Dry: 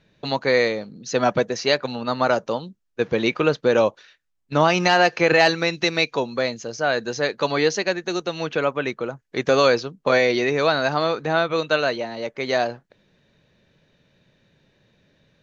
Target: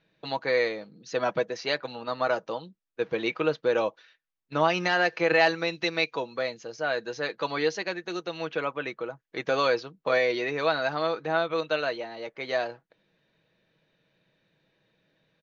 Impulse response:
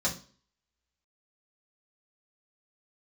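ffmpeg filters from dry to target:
-af "lowpass=4600,lowshelf=f=180:g=-11,aecho=1:1:6.2:0.37,volume=0.473"

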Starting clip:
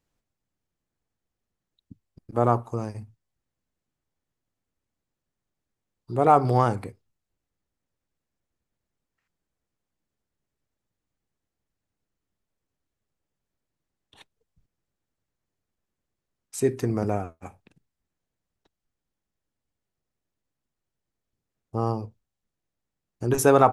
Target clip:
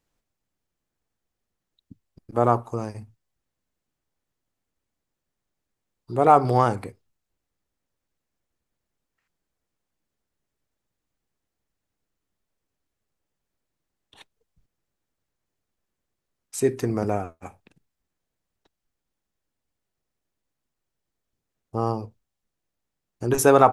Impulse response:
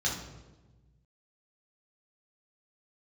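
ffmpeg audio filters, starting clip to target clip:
-af "equalizer=f=110:w=0.51:g=-3.5,volume=1.33"

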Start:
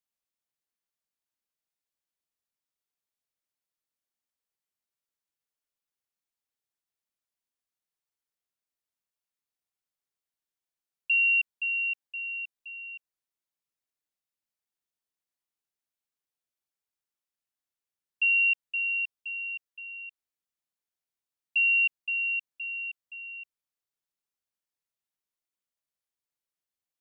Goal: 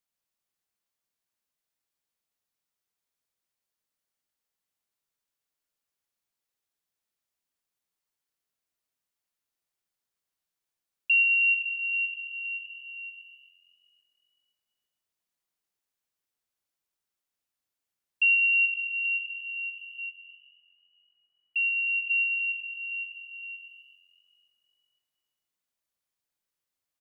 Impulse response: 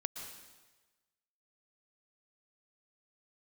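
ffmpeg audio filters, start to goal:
-filter_complex "[0:a]asplit=3[s0][s1][s2];[s0]afade=t=out:st=19.97:d=0.02[s3];[s1]lowpass=f=2500:w=0.5412,lowpass=f=2500:w=1.3066,afade=t=in:st=19.97:d=0.02,afade=t=out:st=22.09:d=0.02[s4];[s2]afade=t=in:st=22.09:d=0.02[s5];[s3][s4][s5]amix=inputs=3:normalize=0,asplit=5[s6][s7][s8][s9][s10];[s7]adelay=389,afreqshift=45,volume=0.0708[s11];[s8]adelay=778,afreqshift=90,volume=0.038[s12];[s9]adelay=1167,afreqshift=135,volume=0.0207[s13];[s10]adelay=1556,afreqshift=180,volume=0.0111[s14];[s6][s11][s12][s13][s14]amix=inputs=5:normalize=0[s15];[1:a]atrim=start_sample=2205[s16];[s15][s16]afir=irnorm=-1:irlink=0,volume=1.58"

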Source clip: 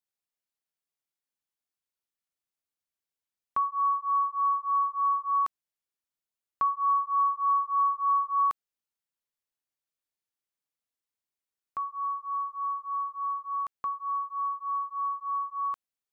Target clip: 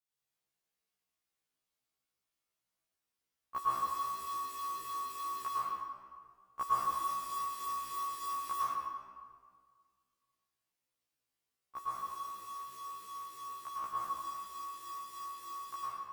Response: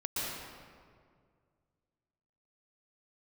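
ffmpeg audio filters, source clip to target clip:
-filter_complex "[0:a]acrusher=bits=6:mode=log:mix=0:aa=0.000001[s0];[1:a]atrim=start_sample=2205,asetrate=48510,aresample=44100[s1];[s0][s1]afir=irnorm=-1:irlink=0,afftfilt=real='re*1.73*eq(mod(b,3),0)':imag='im*1.73*eq(mod(b,3),0)':win_size=2048:overlap=0.75,volume=1.33"

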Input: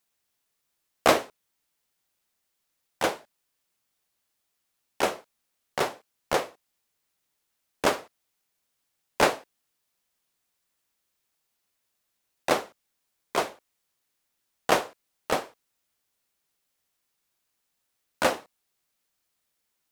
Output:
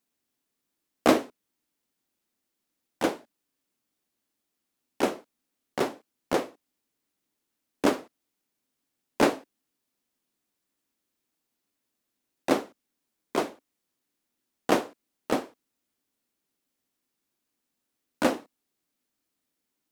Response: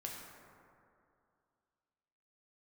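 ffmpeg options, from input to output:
-af "equalizer=f=270:t=o:w=1.1:g=14,volume=0.596"

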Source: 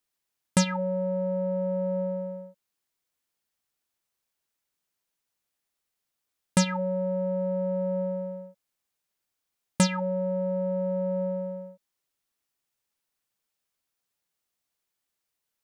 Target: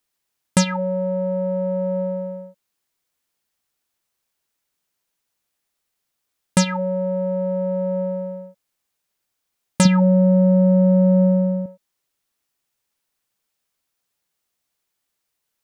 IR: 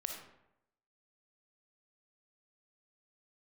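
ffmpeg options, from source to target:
-filter_complex "[0:a]asettb=1/sr,asplit=3[s0][s1][s2];[s0]atrim=end=9.854[s3];[s1]atrim=start=9.85:end=11.66,asetpts=PTS-STARTPTS,afade=t=in:d=0.004:c=qsin,afade=t=out:st=1.806:d=0.004:c=qsin,equalizer=f=190:t=o:w=1.8:g=12[s4];[s2]atrim=start=11.656[s5];[s3][s4]acrossfade=d=0.004:c1=hsin:c2=qsin[s6];[s6][s5]acrossfade=d=0.004:c1=qsin:c2=hsin,volume=1.88"

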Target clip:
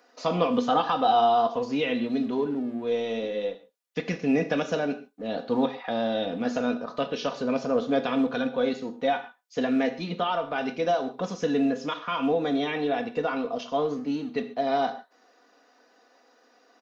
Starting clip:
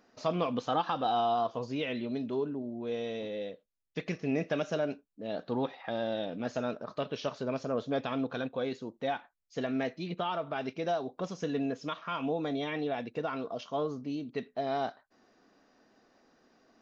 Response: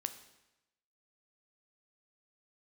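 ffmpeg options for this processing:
-filter_complex "[0:a]aecho=1:1:4.1:0.52,acrossover=split=320|1700[s0][s1][s2];[s0]aeval=exprs='sgn(val(0))*max(abs(val(0))-0.00211,0)':c=same[s3];[s3][s1][s2]amix=inputs=3:normalize=0[s4];[1:a]atrim=start_sample=2205,afade=t=out:st=0.2:d=0.01,atrim=end_sample=9261[s5];[s4][s5]afir=irnorm=-1:irlink=0,volume=2.11"

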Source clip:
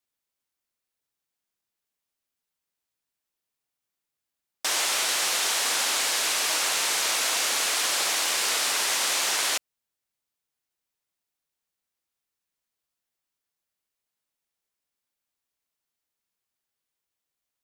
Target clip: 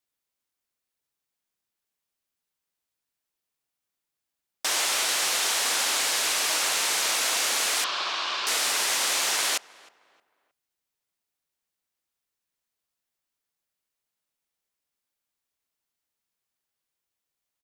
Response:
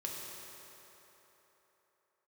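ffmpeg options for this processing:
-filter_complex "[0:a]asettb=1/sr,asplit=3[s0][s1][s2];[s0]atrim=end=7.844[s3];[s1]atrim=start=7.84:end=8.47,asetpts=PTS-STARTPTS,afade=t=in:d=0.004:c=qsin,afade=t=out:st=0.626:d=0.004:c=qsin,highpass=220,equalizer=f=270:t=q:w=4:g=-8,equalizer=f=490:t=q:w=4:g=-9,equalizer=f=790:t=q:w=4:g=-4,equalizer=f=1100:t=q:w=4:g=6,equalizer=f=2000:t=q:w=4:g=-8,lowpass=f=4400:w=0.5412,lowpass=f=4400:w=1.3066[s4];[s2]atrim=start=8.466[s5];[s3][s4]acrossfade=d=0.004:c1=hsin:c2=qsin[s6];[s6][s5]acrossfade=d=0.004:c1=qsin:c2=hsin,asplit=2[s7][s8];[s8]adelay=312,lowpass=f=2200:p=1,volume=0.0841,asplit=2[s9][s10];[s10]adelay=312,lowpass=f=2200:p=1,volume=0.37,asplit=2[s11][s12];[s12]adelay=312,lowpass=f=2200:p=1,volume=0.37[s13];[s9][s11][s13]amix=inputs=3:normalize=0[s14];[s7][s14]amix=inputs=2:normalize=0"

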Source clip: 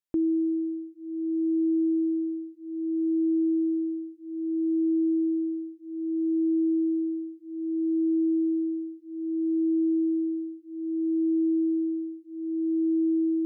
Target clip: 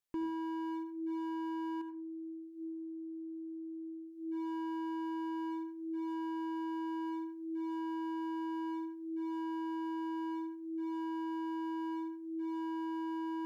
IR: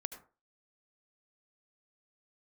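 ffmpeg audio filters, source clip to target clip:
-filter_complex "[0:a]asubboost=boost=11.5:cutoff=63,alimiter=level_in=1.78:limit=0.0631:level=0:latency=1:release=36,volume=0.562,asettb=1/sr,asplit=3[s0][s1][s2];[s0]atrim=end=1.814[s3];[s1]atrim=start=1.81:end=4.17,asetpts=PTS-STARTPTS,afade=t=in:d=0.004:c=qsin,afade=t=out:st=2.356:d=0.004:c=qsin,acompressor=threshold=0.00794:ratio=4[s4];[s2]atrim=start=4.166[s5];[s3][s4]acrossfade=d=0.004:c1=hsin:c2=qsin[s6];[s6][s5]acrossfade=d=0.004:c1=qsin:c2=hsin,volume=56.2,asoftclip=hard,volume=0.0178[s7];[1:a]atrim=start_sample=2205[s8];[s7][s8]afir=irnorm=-1:irlink=0,volume=1.41"

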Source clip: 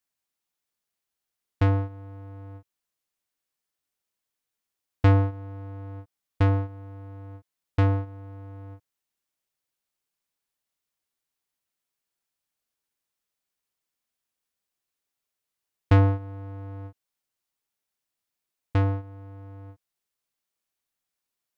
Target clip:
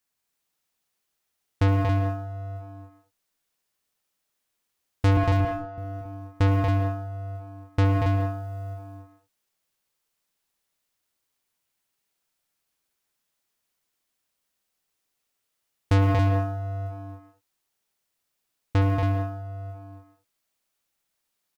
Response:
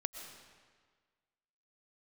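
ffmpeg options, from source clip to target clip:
-filter_complex "[0:a]acrusher=bits=9:mode=log:mix=0:aa=0.000001,asettb=1/sr,asplit=3[s0][s1][s2];[s0]atrim=end=5.174[s3];[s1]atrim=start=5.17:end=5.78,asetpts=PTS-STARTPTS,afade=t=in:d=0.004:c=qsin,afade=t=out:st=0.606:d=0.004:c=qsin,highpass=220,lowpass=3600[s4];[s2]atrim=start=5.776[s5];[s3][s4]acrossfade=d=0.004:c1=hsin:c2=qsin[s6];[s6][s5]acrossfade=d=0.004:c1=qsin:c2=hsin,aecho=1:1:64.14|233.2|277:0.398|0.501|0.501[s7];[1:a]atrim=start_sample=2205,afade=t=out:st=0.26:d=0.01,atrim=end_sample=11907[s8];[s7][s8]afir=irnorm=-1:irlink=0,asoftclip=type=tanh:threshold=0.0841,volume=1.78"

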